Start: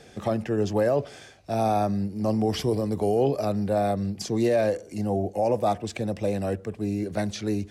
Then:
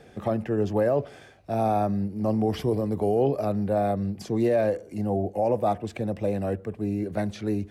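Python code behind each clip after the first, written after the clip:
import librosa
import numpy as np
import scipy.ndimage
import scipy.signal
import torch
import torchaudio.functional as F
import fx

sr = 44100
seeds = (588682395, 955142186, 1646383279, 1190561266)

y = fx.peak_eq(x, sr, hz=6100.0, db=-10.5, octaves=1.9)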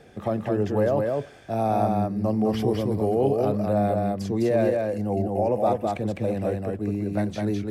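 y = x + 10.0 ** (-3.0 / 20.0) * np.pad(x, (int(207 * sr / 1000.0), 0))[:len(x)]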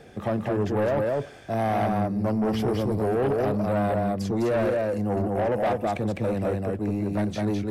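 y = 10.0 ** (-22.0 / 20.0) * np.tanh(x / 10.0 ** (-22.0 / 20.0))
y = F.gain(torch.from_numpy(y), 2.5).numpy()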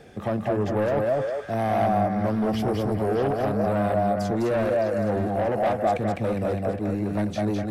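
y = fx.echo_stepped(x, sr, ms=204, hz=590.0, octaves=1.4, feedback_pct=70, wet_db=-2)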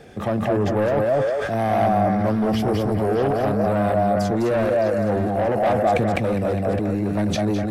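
y = fx.sustainer(x, sr, db_per_s=21.0)
y = F.gain(torch.from_numpy(y), 3.0).numpy()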